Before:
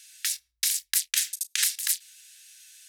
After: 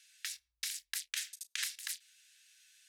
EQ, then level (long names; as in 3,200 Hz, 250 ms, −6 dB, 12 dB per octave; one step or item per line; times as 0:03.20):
low-pass filter 3,100 Hz 6 dB per octave
−6.5 dB